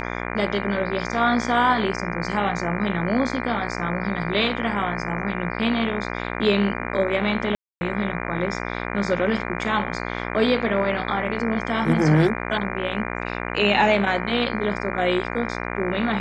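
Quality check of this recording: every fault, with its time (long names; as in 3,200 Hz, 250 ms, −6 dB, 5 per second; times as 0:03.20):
mains buzz 60 Hz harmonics 40 −29 dBFS
0:07.55–0:07.81: drop-out 260 ms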